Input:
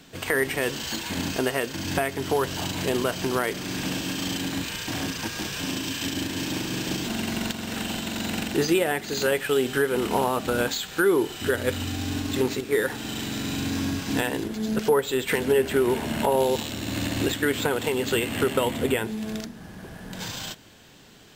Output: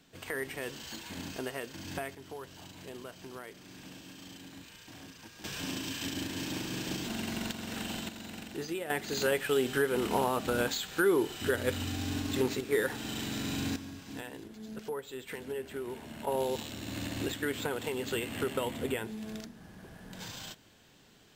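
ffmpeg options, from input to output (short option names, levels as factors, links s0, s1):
-af "asetnsamples=n=441:p=0,asendcmd='2.15 volume volume -20dB;5.44 volume volume -7.5dB;8.09 volume volume -15dB;8.9 volume volume -5.5dB;13.76 volume volume -17dB;16.27 volume volume -9.5dB',volume=0.237"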